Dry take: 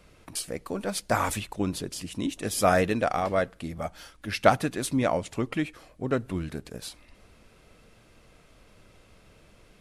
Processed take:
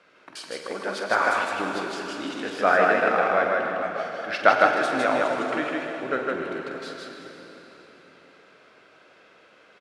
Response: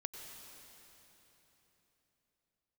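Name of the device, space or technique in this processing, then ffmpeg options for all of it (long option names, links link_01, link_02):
station announcement: -filter_complex "[0:a]asettb=1/sr,asplit=3[link_01][link_02][link_03];[link_01]atrim=end=2.404[link_04];[link_02]atrim=start=2.4:end=3.84,asetpts=PTS-STARTPTS,afade=type=in:duration=0.004:curve=qsin,afade=type=out:start_time=1.436:duration=0.004:curve=qsin,bass=frequency=250:gain=1,treble=frequency=4000:gain=-10[link_05];[link_03]atrim=start=3.836[link_06];[link_04][link_05]acrossfade=duration=0.004:curve1=hsin:curve2=qsin[link_07];[link_07][link_06]acrossfade=duration=0.004:curve1=qsin:curve2=hsin,highpass=370,lowpass=4300,equalizer=frequency=1500:width_type=o:width=0.45:gain=8,aecho=1:1:46.65|157.4:0.355|0.794[link_08];[1:a]atrim=start_sample=2205[link_09];[link_08][link_09]afir=irnorm=-1:irlink=0,volume=4dB"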